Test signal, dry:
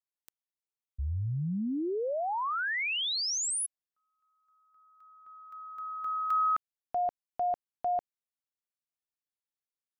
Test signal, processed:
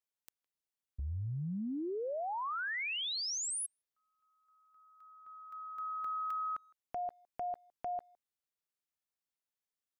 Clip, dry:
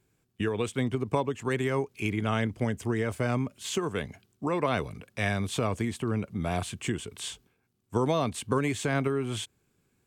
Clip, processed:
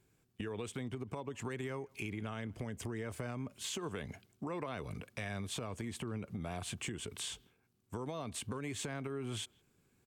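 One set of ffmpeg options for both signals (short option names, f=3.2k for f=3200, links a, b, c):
-filter_complex "[0:a]acompressor=threshold=-34dB:ratio=10:attack=2.6:release=128:knee=1:detection=rms,asplit=2[a][b];[b]adelay=160,highpass=300,lowpass=3.4k,asoftclip=type=hard:threshold=-33.5dB,volume=-27dB[c];[a][c]amix=inputs=2:normalize=0,volume=-1dB"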